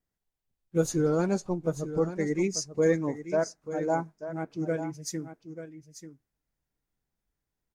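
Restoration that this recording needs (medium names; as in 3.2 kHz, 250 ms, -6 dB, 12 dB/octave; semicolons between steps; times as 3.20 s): inverse comb 889 ms -11.5 dB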